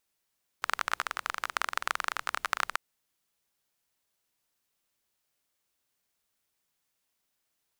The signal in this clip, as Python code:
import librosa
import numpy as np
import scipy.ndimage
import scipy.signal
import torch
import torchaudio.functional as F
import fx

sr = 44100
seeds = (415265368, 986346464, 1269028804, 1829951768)

y = fx.rain(sr, seeds[0], length_s=2.14, drops_per_s=23.0, hz=1300.0, bed_db=-27)